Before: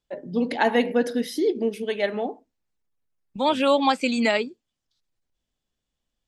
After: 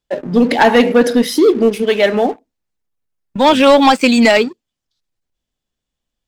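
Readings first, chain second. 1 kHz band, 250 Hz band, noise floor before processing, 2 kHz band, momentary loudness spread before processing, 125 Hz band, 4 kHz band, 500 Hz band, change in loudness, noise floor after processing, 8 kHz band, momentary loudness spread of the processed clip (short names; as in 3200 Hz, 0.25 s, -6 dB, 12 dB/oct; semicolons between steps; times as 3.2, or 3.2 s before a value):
+11.0 dB, +12.0 dB, -83 dBFS, +11.0 dB, 8 LU, n/a, +11.5 dB, +11.5 dB, +11.5 dB, -81 dBFS, +13.5 dB, 9 LU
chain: sample leveller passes 2; gain +6 dB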